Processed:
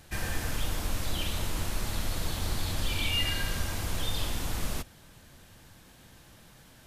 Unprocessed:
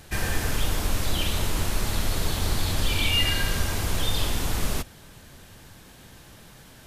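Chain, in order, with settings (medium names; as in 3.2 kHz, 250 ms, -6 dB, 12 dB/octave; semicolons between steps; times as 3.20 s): band-stop 410 Hz, Q 12; trim -6 dB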